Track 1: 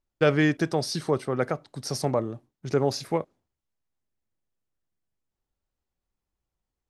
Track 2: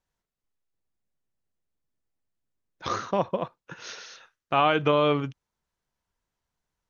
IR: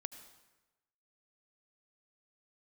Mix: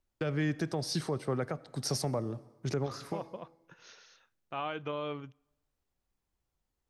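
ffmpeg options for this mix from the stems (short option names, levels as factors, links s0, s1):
-filter_complex "[0:a]acrossover=split=180[s0][s1];[s1]acompressor=threshold=0.0316:ratio=2.5[s2];[s0][s2]amix=inputs=2:normalize=0,volume=0.841,asplit=2[s3][s4];[s4]volume=0.473[s5];[1:a]volume=0.168,asplit=3[s6][s7][s8];[s7]volume=0.106[s9];[s8]apad=whole_len=304020[s10];[s3][s10]sidechaincompress=threshold=0.002:ratio=8:attack=16:release=216[s11];[2:a]atrim=start_sample=2205[s12];[s5][s9]amix=inputs=2:normalize=0[s13];[s13][s12]afir=irnorm=-1:irlink=0[s14];[s11][s6][s14]amix=inputs=3:normalize=0,alimiter=limit=0.0794:level=0:latency=1:release=324"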